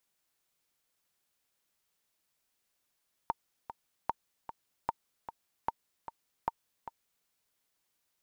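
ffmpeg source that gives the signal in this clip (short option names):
-f lavfi -i "aevalsrc='pow(10,(-16.5-11.5*gte(mod(t,2*60/151),60/151))/20)*sin(2*PI*918*mod(t,60/151))*exp(-6.91*mod(t,60/151)/0.03)':d=3.97:s=44100"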